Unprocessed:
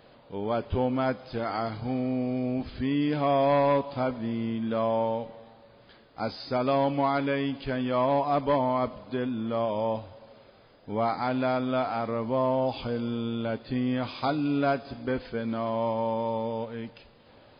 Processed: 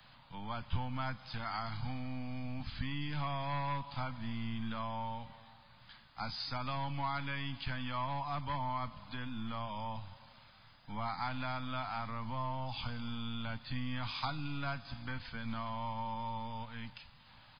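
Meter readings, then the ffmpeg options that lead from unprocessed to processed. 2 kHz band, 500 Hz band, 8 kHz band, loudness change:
−5.0 dB, −21.5 dB, can't be measured, −11.5 dB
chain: -filter_complex "[0:a]equalizer=frequency=320:width=5.3:gain=3,acrossover=split=200[link_01][link_02];[link_02]acompressor=threshold=-33dB:ratio=2[link_03];[link_01][link_03]amix=inputs=2:normalize=0,acrossover=split=220|340|1400[link_04][link_05][link_06][link_07];[link_04]aeval=exprs='max(val(0),0)':channel_layout=same[link_08];[link_08][link_05][link_06][link_07]amix=inputs=4:normalize=0,firequalizer=gain_entry='entry(140,0);entry(390,-29);entry(880,-4);entry(3600,-1)':delay=0.05:min_phase=1,volume=2.5dB"

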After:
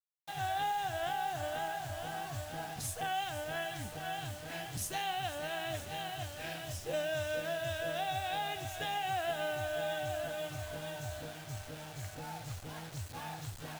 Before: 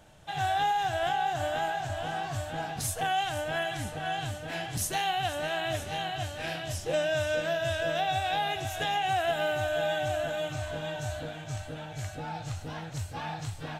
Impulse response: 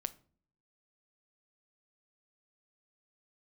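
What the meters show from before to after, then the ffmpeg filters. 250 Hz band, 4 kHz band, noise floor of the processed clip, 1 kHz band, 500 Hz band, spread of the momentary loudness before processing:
−7.0 dB, −6.5 dB, −48 dBFS, −7.0 dB, −7.0 dB, 10 LU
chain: -af "acrusher=bits=6:mix=0:aa=0.000001,volume=-7dB"

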